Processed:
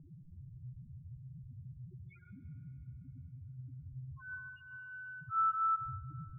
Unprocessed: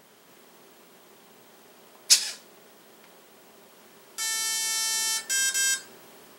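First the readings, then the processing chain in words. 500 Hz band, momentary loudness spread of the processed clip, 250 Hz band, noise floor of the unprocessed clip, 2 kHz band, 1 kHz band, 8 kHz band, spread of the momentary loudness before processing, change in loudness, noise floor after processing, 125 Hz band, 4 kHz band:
under -25 dB, 19 LU, -0.5 dB, -55 dBFS, -13.5 dB, +8.0 dB, under -40 dB, 13 LU, -16.0 dB, -57 dBFS, no reading, under -40 dB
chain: mistuned SSB -270 Hz 310–3300 Hz; bass shelf 350 Hz +10.5 dB; loudest bins only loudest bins 1; plate-style reverb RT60 3.7 s, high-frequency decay 0.85×, pre-delay 95 ms, DRR 8.5 dB; level-controlled noise filter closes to 370 Hz, open at -24.5 dBFS; trim +9.5 dB

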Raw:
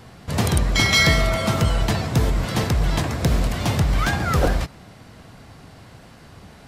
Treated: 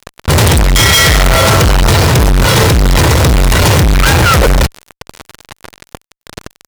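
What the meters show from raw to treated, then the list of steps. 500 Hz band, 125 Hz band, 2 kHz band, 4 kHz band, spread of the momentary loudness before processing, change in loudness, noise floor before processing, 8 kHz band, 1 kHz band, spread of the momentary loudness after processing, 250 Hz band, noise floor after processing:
+12.5 dB, +11.5 dB, +11.0 dB, +12.0 dB, 7 LU, +12.0 dB, -46 dBFS, +15.5 dB, +13.0 dB, 3 LU, +10.0 dB, -73 dBFS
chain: comb 2.1 ms, depth 68%; fuzz box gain 39 dB, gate -35 dBFS; trim +7 dB

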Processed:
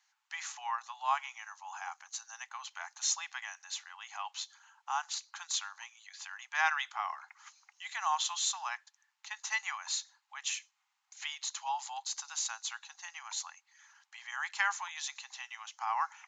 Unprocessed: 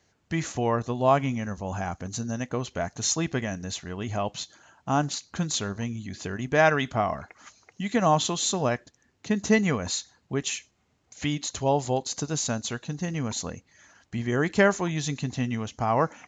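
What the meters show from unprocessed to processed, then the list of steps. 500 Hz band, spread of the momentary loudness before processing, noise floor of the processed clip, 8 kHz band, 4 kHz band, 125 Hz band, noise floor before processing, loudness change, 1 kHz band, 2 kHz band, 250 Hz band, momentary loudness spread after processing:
-32.0 dB, 11 LU, -81 dBFS, -5.0 dB, -4.5 dB, under -40 dB, -69 dBFS, -9.5 dB, -7.0 dB, -5.5 dB, under -40 dB, 14 LU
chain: Chebyshev high-pass 820 Hz, order 6; trim -4.5 dB

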